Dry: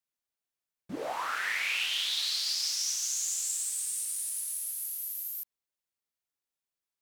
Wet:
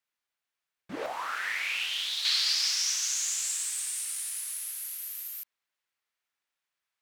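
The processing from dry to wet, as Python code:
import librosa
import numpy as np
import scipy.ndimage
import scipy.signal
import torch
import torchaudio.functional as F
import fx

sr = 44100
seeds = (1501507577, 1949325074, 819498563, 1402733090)

y = fx.peak_eq(x, sr, hz=1800.0, db=fx.steps((0.0, 11.5), (1.06, 2.5), (2.25, 14.0)), octaves=2.9)
y = y * librosa.db_to_amplitude(-3.0)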